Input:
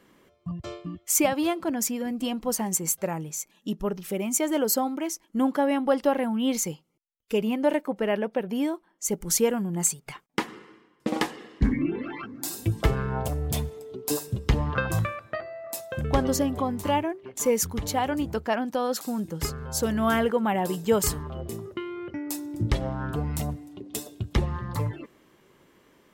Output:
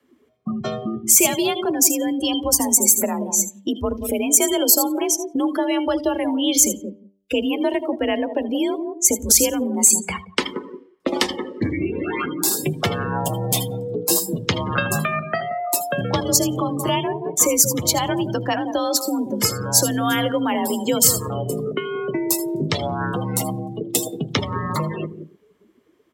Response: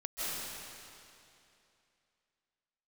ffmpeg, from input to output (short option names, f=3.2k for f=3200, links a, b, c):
-filter_complex "[0:a]afreqshift=45,lowshelf=f=110:g=6,asplit=2[a][b];[b]adelay=176,lowpass=f=1.2k:p=1,volume=-12dB,asplit=2[c][d];[d]adelay=176,lowpass=f=1.2k:p=1,volume=0.18[e];[a][c][e]amix=inputs=3:normalize=0,acrossover=split=220|3000[f][g][h];[g]acompressor=threshold=-36dB:ratio=5[i];[f][i][h]amix=inputs=3:normalize=0[j];[1:a]atrim=start_sample=2205,atrim=end_sample=6174,asetrate=74970,aresample=44100[k];[j][k]afir=irnorm=-1:irlink=0,afftdn=nr=23:nf=-52,acrossover=split=350|1500|2900[l][m][n][o];[l]acompressor=threshold=-51dB:ratio=6[p];[p][m][n][o]amix=inputs=4:normalize=0,bandreject=f=98.3:t=h:w=4,bandreject=f=196.6:t=h:w=4,bandreject=f=294.9:t=h:w=4,bandreject=f=393.2:t=h:w=4,bandreject=f=491.5:t=h:w=4,bandreject=f=589.8:t=h:w=4,bandreject=f=688.1:t=h:w=4,bandreject=f=786.4:t=h:w=4,bandreject=f=884.7:t=h:w=4,bandreject=f=983:t=h:w=4,alimiter=level_in=25dB:limit=-1dB:release=50:level=0:latency=1,volume=-1dB"